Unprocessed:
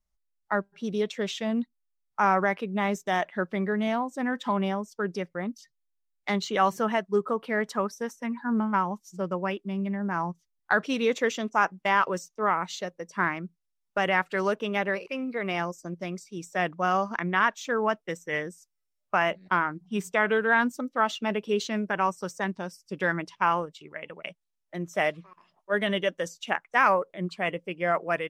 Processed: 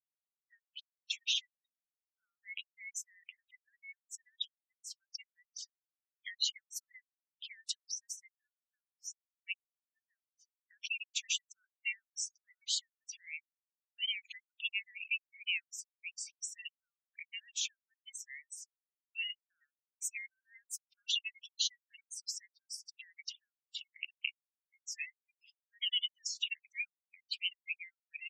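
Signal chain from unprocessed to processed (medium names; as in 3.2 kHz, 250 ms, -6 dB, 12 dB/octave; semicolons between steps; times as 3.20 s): spectral gate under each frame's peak -15 dB strong; steep high-pass 2.4 kHz 96 dB/octave; in parallel at -3 dB: peak limiter -33.5 dBFS, peak gain reduction 11.5 dB; on the sum: warped record 45 rpm, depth 160 cents; trim +2.5 dB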